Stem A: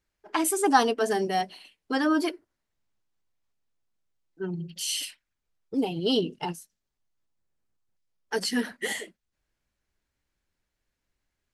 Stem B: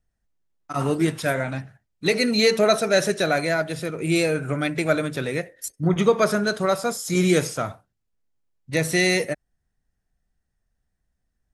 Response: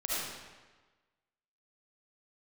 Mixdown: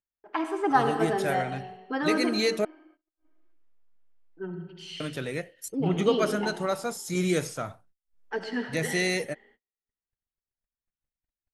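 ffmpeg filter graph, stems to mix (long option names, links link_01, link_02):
-filter_complex "[0:a]lowpass=2300,equalizer=frequency=76:width_type=o:width=2.6:gain=-6,volume=-4dB,asplit=2[link_01][link_02];[link_02]volume=-10dB[link_03];[1:a]bandreject=frequency=4900:width=29,dynaudnorm=framelen=670:gausssize=3:maxgain=6dB,volume=-11dB,asplit=3[link_04][link_05][link_06];[link_04]atrim=end=2.65,asetpts=PTS-STARTPTS,afade=type=out:start_time=2.646:duration=0.004:curve=hsin[link_07];[link_05]atrim=start=2.65:end=5,asetpts=PTS-STARTPTS,volume=0[link_08];[link_06]atrim=start=5,asetpts=PTS-STARTPTS,afade=type=in:duration=0.004:curve=hsin[link_09];[link_07][link_08][link_09]concat=n=3:v=0:a=1[link_10];[2:a]atrim=start_sample=2205[link_11];[link_03][link_11]afir=irnorm=-1:irlink=0[link_12];[link_01][link_10][link_12]amix=inputs=3:normalize=0,acompressor=mode=upward:threshold=-49dB:ratio=2.5,agate=range=-37dB:threshold=-57dB:ratio=16:detection=peak"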